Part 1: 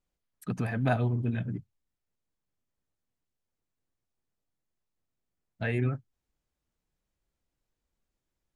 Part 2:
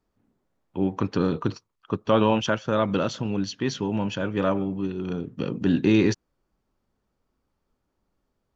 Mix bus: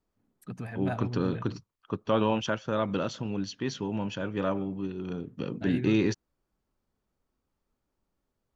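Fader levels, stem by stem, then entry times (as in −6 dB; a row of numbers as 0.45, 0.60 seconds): −7.0, −5.5 decibels; 0.00, 0.00 seconds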